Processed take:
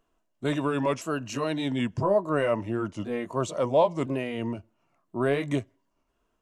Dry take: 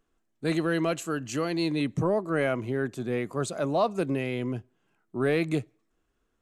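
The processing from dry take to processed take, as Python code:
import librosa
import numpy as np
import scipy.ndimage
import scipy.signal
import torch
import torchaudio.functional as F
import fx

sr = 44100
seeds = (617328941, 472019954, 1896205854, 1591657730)

y = fx.pitch_ramps(x, sr, semitones=-3.5, every_ms=1015)
y = fx.small_body(y, sr, hz=(660.0, 970.0, 2800.0), ring_ms=20, db=9)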